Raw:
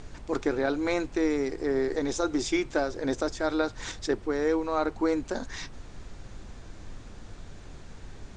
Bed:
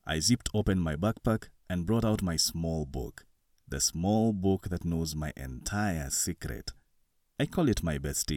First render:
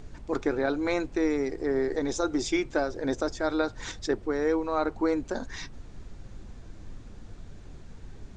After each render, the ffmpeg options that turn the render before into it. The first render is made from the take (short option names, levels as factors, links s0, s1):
-af "afftdn=nr=6:nf=-46"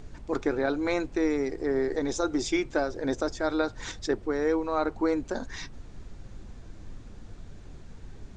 -af anull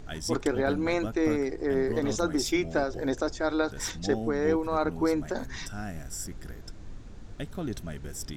-filter_complex "[1:a]volume=0.422[s0];[0:a][s0]amix=inputs=2:normalize=0"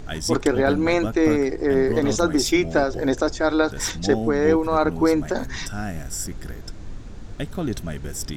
-af "volume=2.37"